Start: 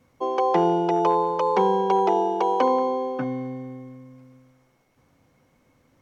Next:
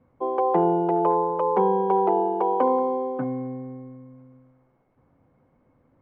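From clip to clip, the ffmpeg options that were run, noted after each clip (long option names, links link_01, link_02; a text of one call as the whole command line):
ffmpeg -i in.wav -af "lowpass=1200" out.wav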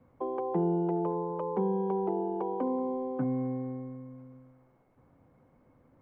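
ffmpeg -i in.wav -filter_complex "[0:a]acrossover=split=310[link_01][link_02];[link_02]acompressor=threshold=-36dB:ratio=6[link_03];[link_01][link_03]amix=inputs=2:normalize=0" out.wav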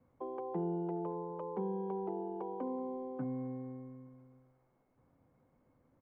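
ffmpeg -i in.wav -filter_complex "[0:a]asplit=2[link_01][link_02];[link_02]adelay=874.6,volume=-28dB,highshelf=frequency=4000:gain=-19.7[link_03];[link_01][link_03]amix=inputs=2:normalize=0,volume=-8dB" out.wav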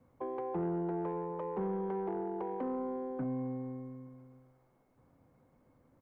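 ffmpeg -i in.wav -af "asoftclip=type=tanh:threshold=-32.5dB,volume=4dB" out.wav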